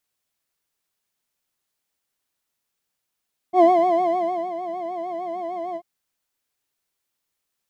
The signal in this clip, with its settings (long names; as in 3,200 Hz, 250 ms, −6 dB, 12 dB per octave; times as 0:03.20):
subtractive patch with vibrato F5, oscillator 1 triangle, interval +7 semitones, sub −20 dB, filter bandpass, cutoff 150 Hz, Q 7.1, filter envelope 1 octave, filter decay 0.26 s, attack 71 ms, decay 0.91 s, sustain −13 dB, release 0.06 s, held 2.23 s, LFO 6.6 Hz, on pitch 99 cents